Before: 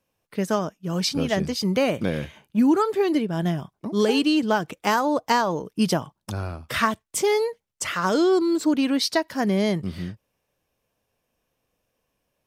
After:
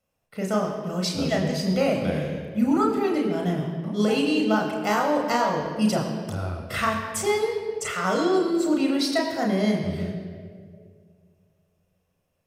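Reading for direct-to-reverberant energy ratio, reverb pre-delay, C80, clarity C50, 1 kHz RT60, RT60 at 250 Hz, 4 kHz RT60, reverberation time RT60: 0.0 dB, 33 ms, 5.5 dB, 5.5 dB, 1.7 s, 2.2 s, 1.3 s, 2.1 s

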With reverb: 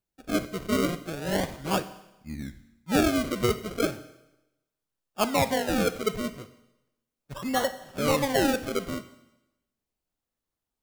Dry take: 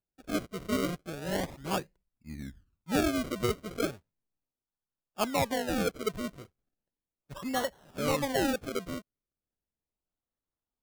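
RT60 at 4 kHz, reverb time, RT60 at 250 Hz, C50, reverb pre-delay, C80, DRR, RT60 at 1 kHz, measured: 0.95 s, 0.95 s, 0.95 s, 14.0 dB, 8 ms, 16.5 dB, 11.0 dB, 0.95 s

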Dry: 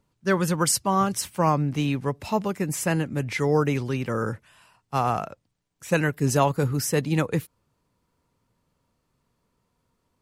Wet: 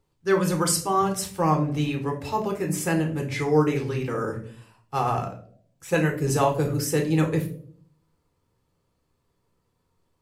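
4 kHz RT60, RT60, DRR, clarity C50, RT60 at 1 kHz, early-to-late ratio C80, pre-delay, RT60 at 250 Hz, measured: 0.35 s, 0.60 s, 1.5 dB, 10.0 dB, 0.45 s, 15.0 dB, 3 ms, 0.75 s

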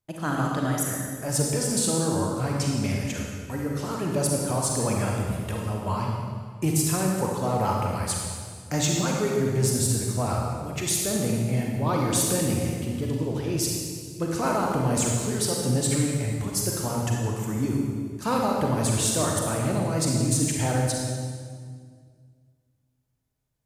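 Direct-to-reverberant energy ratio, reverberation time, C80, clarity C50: −1.0 dB, 1.9 s, 2.0 dB, 0.0 dB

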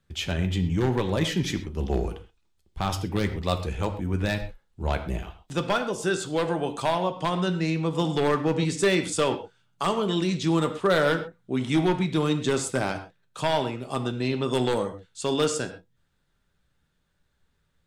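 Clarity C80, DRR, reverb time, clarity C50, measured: 13.0 dB, 6.5 dB, non-exponential decay, 11.0 dB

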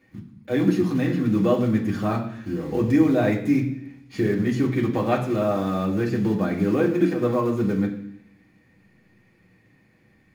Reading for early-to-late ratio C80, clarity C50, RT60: 11.5 dB, 9.0 dB, 0.70 s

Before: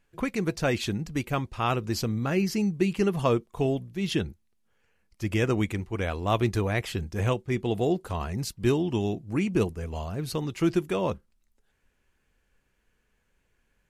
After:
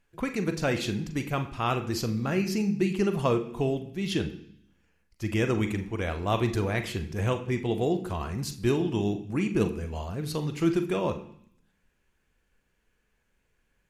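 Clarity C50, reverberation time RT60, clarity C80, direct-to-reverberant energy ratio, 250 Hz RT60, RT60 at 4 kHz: 12.0 dB, 0.65 s, 15.0 dB, 7.5 dB, 0.85 s, 0.85 s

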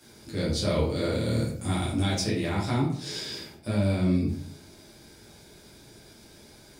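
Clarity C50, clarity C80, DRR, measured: 4.0 dB, 8.5 dB, −7.5 dB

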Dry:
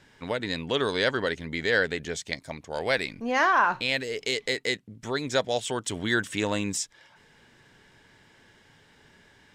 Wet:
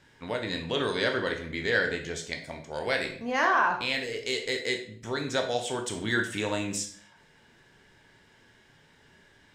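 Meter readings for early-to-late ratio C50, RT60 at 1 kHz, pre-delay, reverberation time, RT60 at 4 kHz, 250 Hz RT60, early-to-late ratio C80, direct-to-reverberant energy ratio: 8.5 dB, 0.55 s, 16 ms, 0.55 s, 0.45 s, 0.65 s, 12.0 dB, 3.0 dB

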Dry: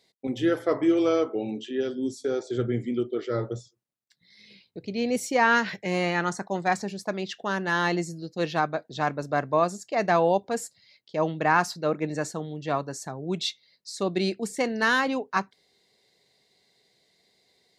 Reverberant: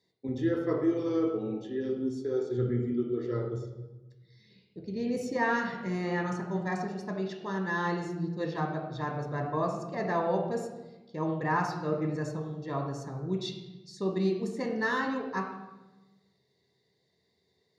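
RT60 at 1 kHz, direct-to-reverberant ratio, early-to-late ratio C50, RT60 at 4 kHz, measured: 1.0 s, 0.5 dB, 4.5 dB, 0.80 s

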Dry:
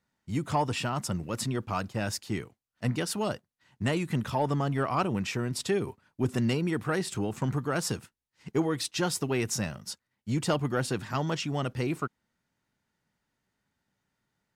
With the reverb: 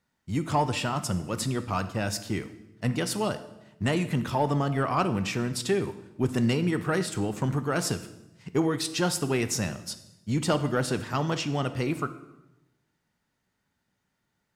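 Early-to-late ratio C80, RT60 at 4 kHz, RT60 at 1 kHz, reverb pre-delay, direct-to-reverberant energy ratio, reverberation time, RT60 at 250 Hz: 15.5 dB, 0.80 s, 0.90 s, 10 ms, 10.5 dB, 0.95 s, 1.1 s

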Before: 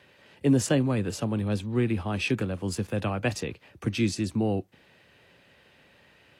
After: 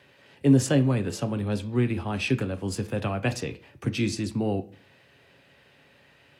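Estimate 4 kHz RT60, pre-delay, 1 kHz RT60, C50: 0.35 s, 7 ms, 0.40 s, 17.0 dB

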